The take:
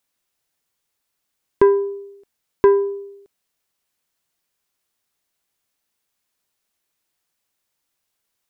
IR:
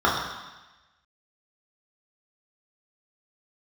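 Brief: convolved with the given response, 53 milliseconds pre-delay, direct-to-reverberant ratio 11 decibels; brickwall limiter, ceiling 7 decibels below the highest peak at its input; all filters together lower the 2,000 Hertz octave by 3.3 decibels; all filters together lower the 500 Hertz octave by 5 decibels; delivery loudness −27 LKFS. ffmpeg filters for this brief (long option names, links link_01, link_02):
-filter_complex "[0:a]equalizer=frequency=500:width_type=o:gain=-7,equalizer=frequency=2000:width_type=o:gain=-4,alimiter=limit=-14dB:level=0:latency=1,asplit=2[link_01][link_02];[1:a]atrim=start_sample=2205,adelay=53[link_03];[link_02][link_03]afir=irnorm=-1:irlink=0,volume=-31.5dB[link_04];[link_01][link_04]amix=inputs=2:normalize=0,volume=-0.5dB"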